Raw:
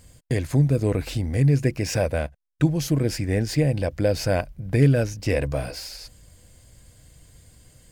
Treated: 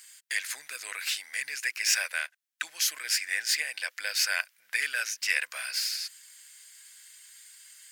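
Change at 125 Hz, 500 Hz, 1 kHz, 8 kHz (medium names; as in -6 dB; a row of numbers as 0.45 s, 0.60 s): under -40 dB, -27.0 dB, -8.5 dB, +6.5 dB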